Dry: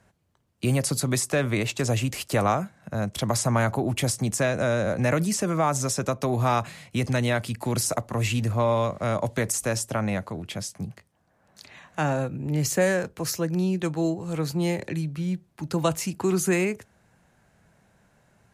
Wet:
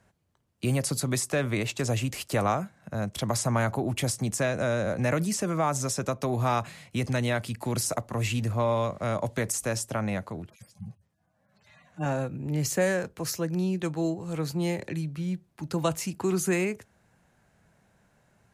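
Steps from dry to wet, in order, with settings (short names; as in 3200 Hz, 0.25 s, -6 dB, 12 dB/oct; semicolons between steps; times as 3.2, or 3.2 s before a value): 10.46–12.06 median-filter separation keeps harmonic; gain -3 dB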